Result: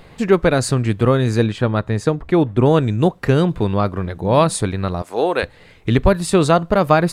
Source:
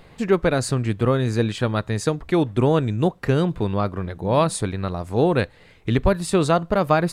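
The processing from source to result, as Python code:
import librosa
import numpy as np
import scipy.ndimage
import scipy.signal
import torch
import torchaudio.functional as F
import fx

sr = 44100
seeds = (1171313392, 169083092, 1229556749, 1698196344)

y = fx.high_shelf(x, sr, hz=3000.0, db=-10.0, at=(1.46, 2.66))
y = fx.highpass(y, sr, hz=460.0, slope=12, at=(5.02, 5.43))
y = y * 10.0 ** (4.5 / 20.0)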